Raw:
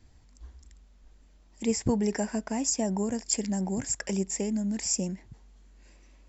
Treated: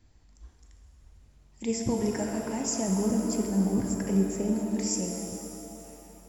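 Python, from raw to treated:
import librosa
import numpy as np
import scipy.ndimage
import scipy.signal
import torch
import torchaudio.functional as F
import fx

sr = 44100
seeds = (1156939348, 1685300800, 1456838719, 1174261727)

y = fx.tilt_shelf(x, sr, db=6.5, hz=790.0, at=(2.88, 4.54))
y = fx.rev_shimmer(y, sr, seeds[0], rt60_s=3.0, semitones=7, shimmer_db=-8, drr_db=2.0)
y = y * 10.0 ** (-3.5 / 20.0)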